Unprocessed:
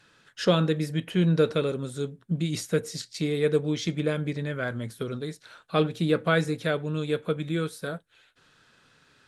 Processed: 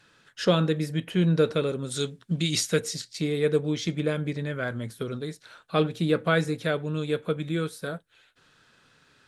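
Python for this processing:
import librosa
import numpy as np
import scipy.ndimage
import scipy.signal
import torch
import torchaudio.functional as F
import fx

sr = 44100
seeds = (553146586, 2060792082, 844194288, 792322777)

y = fx.peak_eq(x, sr, hz=4700.0, db=fx.line((1.9, 15.0), (2.93, 7.5)), octaves=2.9, at=(1.9, 2.93), fade=0.02)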